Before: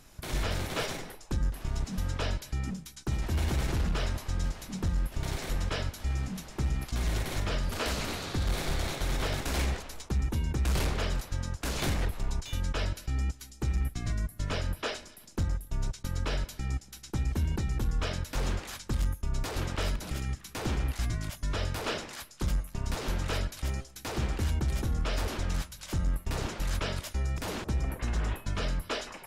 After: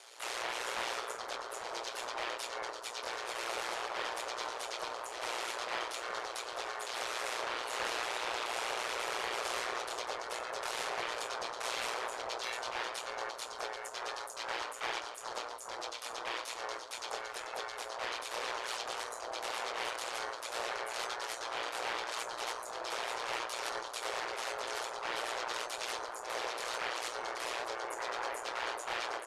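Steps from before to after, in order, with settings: elliptic high-pass 730 Hz, stop band 50 dB; in parallel at -2 dB: compressor with a negative ratio -43 dBFS, ratio -1; on the sum: overload inside the chain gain 29 dB; harmony voices +4 st -5 dB, +7 st -4 dB, +12 st -16 dB; doubling 15 ms -7 dB; saturation -27 dBFS, distortion -19 dB; pitch shift -8.5 st; on a send: bucket-brigade echo 421 ms, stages 4096, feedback 76%, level -5 dB; on the sum: ring modulator 59 Hz

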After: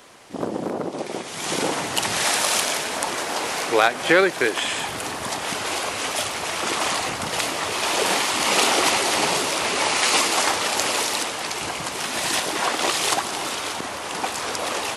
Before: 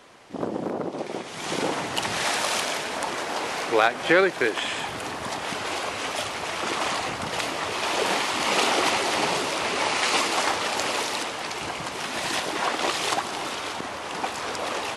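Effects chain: treble shelf 7.1 kHz +11.5 dB; trim +2 dB

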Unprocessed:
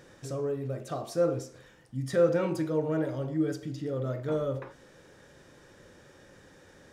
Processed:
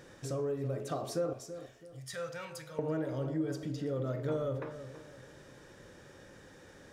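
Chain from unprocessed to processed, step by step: 1.33–2.79 s: amplifier tone stack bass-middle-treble 10-0-10; compression 4:1, threshold -31 dBFS, peak gain reduction 9 dB; filtered feedback delay 330 ms, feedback 38%, low-pass 1.4 kHz, level -11 dB

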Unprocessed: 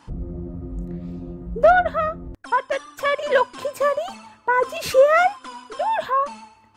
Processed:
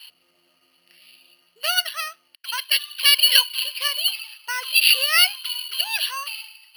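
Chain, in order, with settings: resonant high-pass 2.9 kHz, resonance Q 14; careless resampling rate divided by 6×, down filtered, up hold; trim +4 dB

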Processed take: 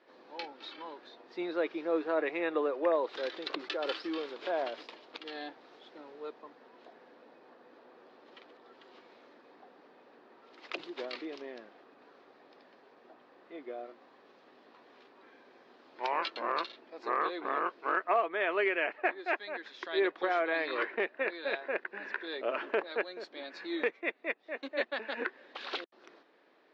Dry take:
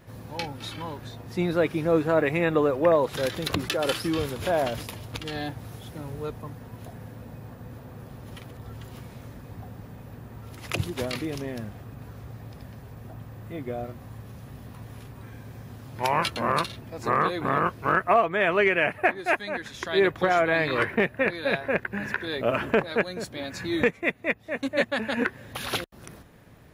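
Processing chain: elliptic band-pass 330–4500 Hz, stop band 50 dB; trim -7.5 dB

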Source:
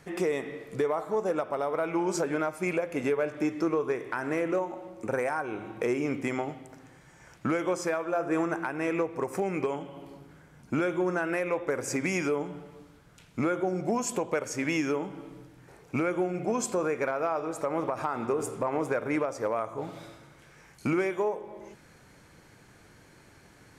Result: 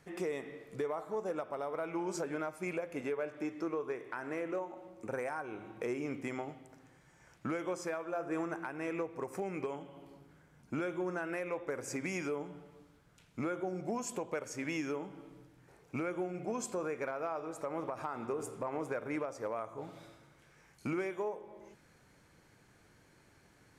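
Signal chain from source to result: 3.01–4.77 s: tone controls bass -4 dB, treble -3 dB; trim -8.5 dB

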